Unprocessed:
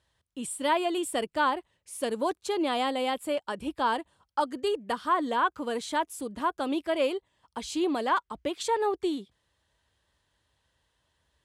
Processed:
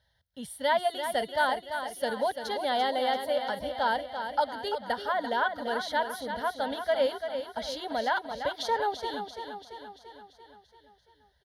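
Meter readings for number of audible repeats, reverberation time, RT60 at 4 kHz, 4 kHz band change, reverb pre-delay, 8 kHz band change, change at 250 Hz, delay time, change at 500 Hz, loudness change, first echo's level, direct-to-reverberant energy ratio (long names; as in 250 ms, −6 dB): 6, no reverb audible, no reverb audible, +1.5 dB, no reverb audible, −6.5 dB, −8.5 dB, 340 ms, +0.5 dB, −0.5 dB, −8.0 dB, no reverb audible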